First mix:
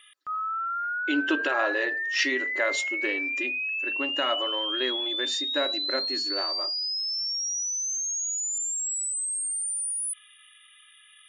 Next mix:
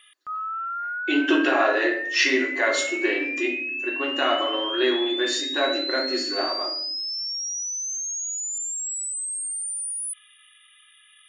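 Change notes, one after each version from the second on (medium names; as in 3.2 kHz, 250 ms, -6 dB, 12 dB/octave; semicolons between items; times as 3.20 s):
reverb: on, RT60 0.65 s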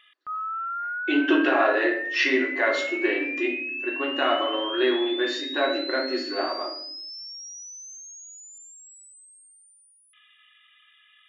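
master: add Gaussian low-pass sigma 1.9 samples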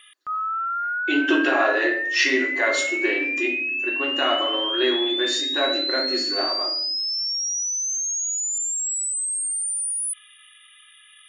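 background +4.0 dB; master: remove Gaussian low-pass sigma 1.9 samples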